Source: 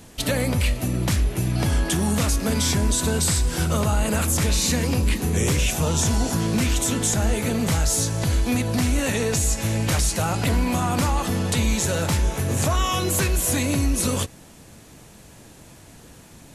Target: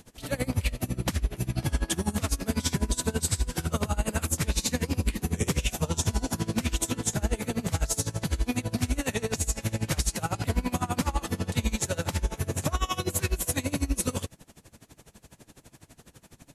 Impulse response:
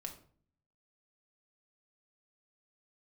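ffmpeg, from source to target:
-af "aeval=exprs='val(0)*pow(10,-22*(0.5-0.5*cos(2*PI*12*n/s))/20)':channel_layout=same,volume=-1.5dB"

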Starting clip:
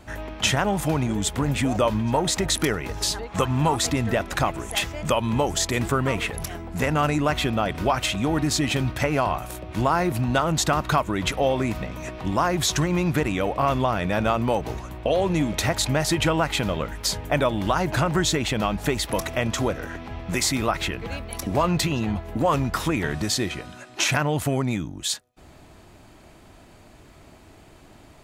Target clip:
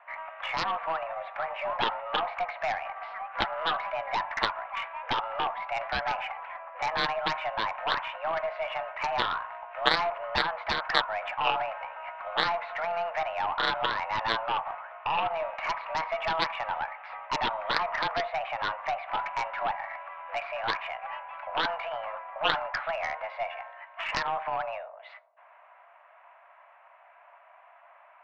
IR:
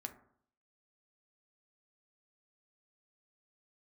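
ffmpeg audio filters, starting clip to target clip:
-filter_complex "[0:a]highpass=frequency=330:width_type=q:width=0.5412,highpass=frequency=330:width_type=q:width=1.307,lowpass=frequency=2100:width_type=q:width=0.5176,lowpass=frequency=2100:width_type=q:width=0.7071,lowpass=frequency=2100:width_type=q:width=1.932,afreqshift=330,asplit=2[link_01][link_02];[1:a]atrim=start_sample=2205,asetrate=25578,aresample=44100[link_03];[link_02][link_03]afir=irnorm=-1:irlink=0,volume=1.5dB[link_04];[link_01][link_04]amix=inputs=2:normalize=0,aeval=exprs='0.841*(cos(1*acos(clip(val(0)/0.841,-1,1)))-cos(1*PI/2))+0.422*(cos(3*acos(clip(val(0)/0.841,-1,1)))-cos(3*PI/2))+0.0168*(cos(4*acos(clip(val(0)/0.841,-1,1)))-cos(4*PI/2))+0.0211*(cos(6*acos(clip(val(0)/0.841,-1,1)))-cos(6*PI/2))':channel_layout=same,volume=-2dB"

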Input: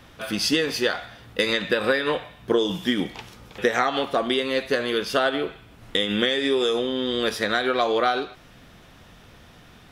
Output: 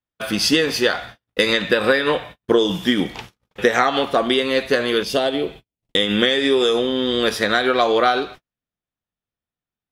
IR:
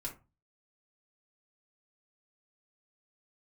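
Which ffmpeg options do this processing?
-filter_complex "[0:a]asettb=1/sr,asplit=3[link_01][link_02][link_03];[link_01]atrim=end=5.034[link_04];[link_02]atrim=start=5.03:end=5.96,asetpts=PTS-STARTPTS,afade=type=in:duration=0.004:curve=qsin,afade=type=out:start_time=0.926:duration=0.004:curve=qsin,equalizer=frequency=1400:width=1.6:gain=-13.5[link_05];[link_03]atrim=start=5.956[link_06];[link_04][link_05]acrossfade=duration=0.004:curve1=hsin:curve2=qsin[link_07];[link_07][link_06]acrossfade=duration=0.004:curve1=qsin:curve2=hsin,agate=range=-48dB:threshold=-40dB:ratio=16:detection=peak,volume=5dB"

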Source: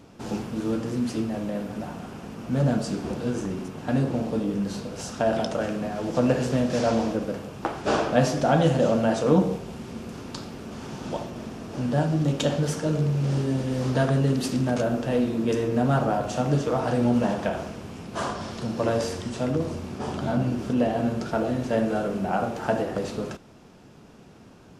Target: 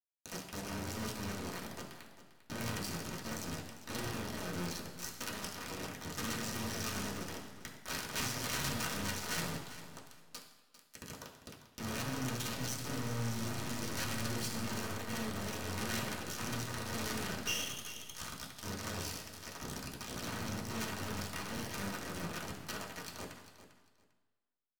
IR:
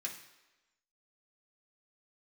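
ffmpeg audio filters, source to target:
-filter_complex "[0:a]asplit=3[link_01][link_02][link_03];[link_01]afade=type=out:start_time=19.19:duration=0.02[link_04];[link_02]highpass=270,afade=type=in:start_time=19.19:duration=0.02,afade=type=out:start_time=19.6:duration=0.02[link_05];[link_03]afade=type=in:start_time=19.6:duration=0.02[link_06];[link_04][link_05][link_06]amix=inputs=3:normalize=0,afreqshift=-25,aeval=exprs='(mod(5.01*val(0)+1,2)-1)/5.01':channel_layout=same,aeval=exprs='(tanh(8.91*val(0)+0.4)-tanh(0.4))/8.91':channel_layout=same,asettb=1/sr,asplit=3[link_07][link_08][link_09];[link_07]atrim=end=17.474[link_10];[link_08]atrim=start=17.47:end=18.11,asetpts=PTS-STARTPTS,afade=type=in:duration=0.004:curve=qsin,afade=type=out:start_time=0.636:duration=0.004:curve=qsin,lowpass=frequency=2900:width_type=q:width=0.5098,lowpass=frequency=2900:width_type=q:width=0.6013,lowpass=frequency=2900:width_type=q:width=0.9,lowpass=frequency=2900:width_type=q:width=2.563,afreqshift=-3400[link_11];[link_09]atrim=start=18.106[link_12];[link_10][link_11]acrossfade=duration=0.004:curve1=hsin:curve2=qsin[link_13];[link_13][link_12]acrossfade=duration=0.004:curve1=qsin:curve2=hsin,equalizer=frequency=630:width_type=o:width=2.8:gain=-13,acrusher=bits=3:dc=4:mix=0:aa=0.000001,aecho=1:1:398|796:0.2|0.0399[link_14];[1:a]atrim=start_sample=2205,asetrate=33075,aresample=44100[link_15];[link_14][link_15]afir=irnorm=-1:irlink=0,volume=-1dB"

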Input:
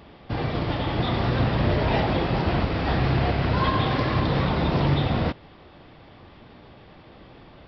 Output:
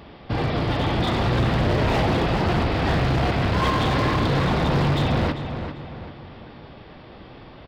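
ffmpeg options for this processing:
ffmpeg -i in.wav -filter_complex "[0:a]asoftclip=type=hard:threshold=-22dB,asplit=2[link_01][link_02];[link_02]adelay=395,lowpass=frequency=3400:poles=1,volume=-8.5dB,asplit=2[link_03][link_04];[link_04]adelay=395,lowpass=frequency=3400:poles=1,volume=0.44,asplit=2[link_05][link_06];[link_06]adelay=395,lowpass=frequency=3400:poles=1,volume=0.44,asplit=2[link_07][link_08];[link_08]adelay=395,lowpass=frequency=3400:poles=1,volume=0.44,asplit=2[link_09][link_10];[link_10]adelay=395,lowpass=frequency=3400:poles=1,volume=0.44[link_11];[link_03][link_05][link_07][link_09][link_11]amix=inputs=5:normalize=0[link_12];[link_01][link_12]amix=inputs=2:normalize=0,volume=4dB" out.wav

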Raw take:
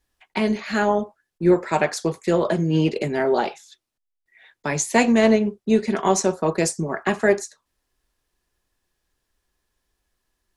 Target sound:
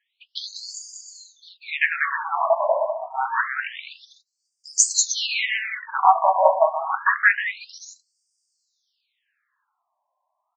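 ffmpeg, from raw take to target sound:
ffmpeg -i in.wav -af "aecho=1:1:190|313.5|393.8|446|479.9:0.631|0.398|0.251|0.158|0.1,afftfilt=real='re*between(b*sr/1024,780*pow(6600/780,0.5+0.5*sin(2*PI*0.27*pts/sr))/1.41,780*pow(6600/780,0.5+0.5*sin(2*PI*0.27*pts/sr))*1.41)':imag='im*between(b*sr/1024,780*pow(6600/780,0.5+0.5*sin(2*PI*0.27*pts/sr))/1.41,780*pow(6600/780,0.5+0.5*sin(2*PI*0.27*pts/sr))*1.41)':win_size=1024:overlap=0.75,volume=8.5dB" out.wav

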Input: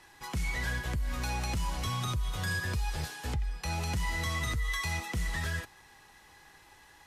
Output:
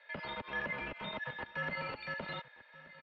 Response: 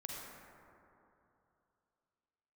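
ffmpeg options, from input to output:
-filter_complex "[0:a]highpass=260,equalizer=frequency=1300:width_type=o:width=2.4:gain=-8.5,aecho=1:1:6:0.67,acrossover=split=360[link_01][link_02];[link_01]acrusher=bits=5:dc=4:mix=0:aa=0.000001[link_03];[link_03][link_02]amix=inputs=2:normalize=0,asetrate=103194,aresample=44100,asplit=2[link_04][link_05];[link_05]aecho=0:1:1175:0.126[link_06];[link_04][link_06]amix=inputs=2:normalize=0,highpass=frequency=340:width_type=q:width=0.5412,highpass=frequency=340:width_type=q:width=1.307,lowpass=frequency=3100:width_type=q:width=0.5176,lowpass=frequency=3100:width_type=q:width=0.7071,lowpass=frequency=3100:width_type=q:width=1.932,afreqshift=-230,volume=6dB"

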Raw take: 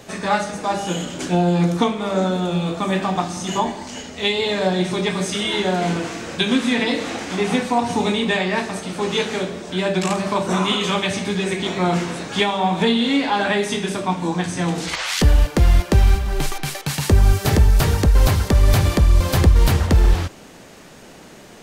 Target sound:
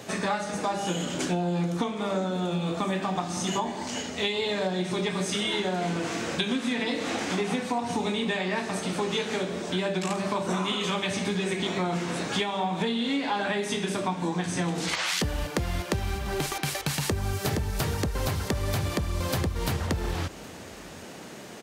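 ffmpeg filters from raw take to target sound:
ffmpeg -i in.wav -af "highpass=92,acompressor=threshold=-25dB:ratio=6,aecho=1:1:770:0.0668" out.wav

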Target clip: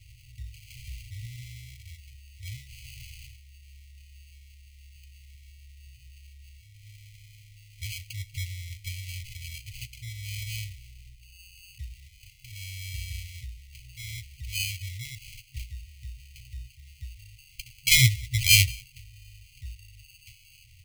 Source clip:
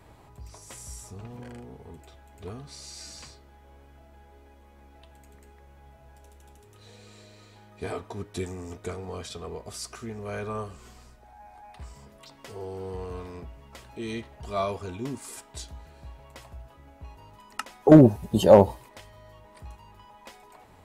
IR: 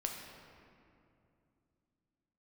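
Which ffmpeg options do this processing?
-filter_complex "[0:a]asplit=2[link_01][link_02];[link_02]adelay=190,highpass=300,lowpass=3400,asoftclip=type=hard:threshold=-12.5dB,volume=-22dB[link_03];[link_01][link_03]amix=inputs=2:normalize=0,acrusher=samples=24:mix=1:aa=0.000001,afftfilt=real='re*(1-between(b*sr/4096,130,1900))':imag='im*(1-between(b*sr/4096,130,1900))':win_size=4096:overlap=0.75,volume=4dB"

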